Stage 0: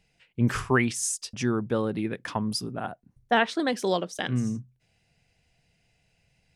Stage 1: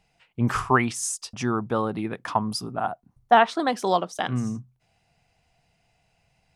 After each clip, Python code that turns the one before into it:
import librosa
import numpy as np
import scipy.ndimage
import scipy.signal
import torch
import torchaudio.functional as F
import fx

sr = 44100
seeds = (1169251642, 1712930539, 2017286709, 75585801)

y = fx.band_shelf(x, sr, hz=940.0, db=8.5, octaves=1.2)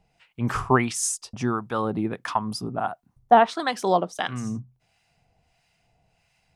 y = fx.harmonic_tremolo(x, sr, hz=1.5, depth_pct=70, crossover_hz=940.0)
y = y * 10.0 ** (3.5 / 20.0)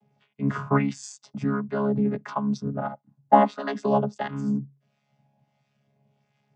y = fx.chord_vocoder(x, sr, chord='bare fifth', root=49)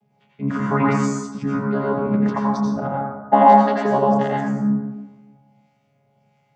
y = fx.rev_plate(x, sr, seeds[0], rt60_s=1.2, hf_ratio=0.35, predelay_ms=75, drr_db=-4.5)
y = y * 10.0 ** (1.0 / 20.0)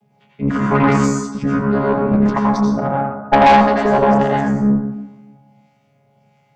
y = fx.tube_stage(x, sr, drive_db=13.0, bias=0.5)
y = y * 10.0 ** (7.5 / 20.0)